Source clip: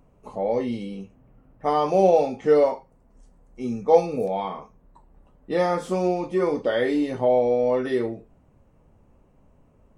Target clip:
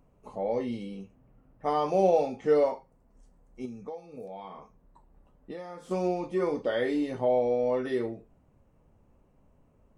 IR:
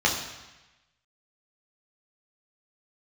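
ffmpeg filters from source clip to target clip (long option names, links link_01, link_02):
-filter_complex "[0:a]asettb=1/sr,asplit=3[link_01][link_02][link_03];[link_01]atrim=end=3.654[link_04];[link_02]atrim=start=3.65:end=5.91,asetpts=PTS-STARTPTS,afade=type=in:duration=0.004:curve=qsin,afade=type=out:start_time=2.256:duration=0.004:curve=qsin,acompressor=threshold=-32dB:ratio=12[link_05];[link_03]atrim=start=5.906[link_06];[link_04][link_05]acrossfade=duration=0.004:curve1=hsin:curve2=qsin[link_07];[link_07][link_06]acrossfade=duration=0.004:curve1=qsin:curve2=hsin,volume=-5.5dB"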